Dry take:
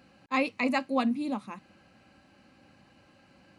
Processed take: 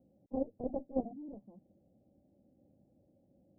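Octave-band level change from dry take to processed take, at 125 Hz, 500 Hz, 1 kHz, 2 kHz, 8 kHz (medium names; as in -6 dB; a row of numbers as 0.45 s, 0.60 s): -4.5 dB, -5.5 dB, -17.0 dB, under -40 dB, no reading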